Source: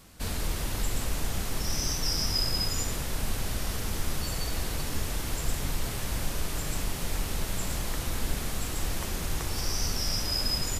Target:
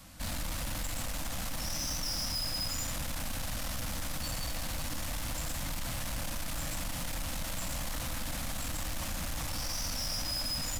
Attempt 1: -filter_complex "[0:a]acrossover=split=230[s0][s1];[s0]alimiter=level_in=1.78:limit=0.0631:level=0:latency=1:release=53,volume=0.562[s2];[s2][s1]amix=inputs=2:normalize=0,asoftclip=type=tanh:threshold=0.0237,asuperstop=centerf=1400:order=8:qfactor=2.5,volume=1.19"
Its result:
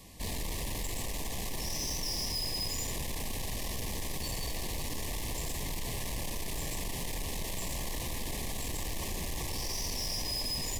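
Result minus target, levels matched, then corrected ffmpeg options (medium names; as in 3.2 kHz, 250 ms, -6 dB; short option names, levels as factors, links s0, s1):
500 Hz band +3.0 dB
-filter_complex "[0:a]acrossover=split=230[s0][s1];[s0]alimiter=level_in=1.78:limit=0.0631:level=0:latency=1:release=53,volume=0.562[s2];[s2][s1]amix=inputs=2:normalize=0,asoftclip=type=tanh:threshold=0.0237,asuperstop=centerf=400:order=8:qfactor=2.5,volume=1.19"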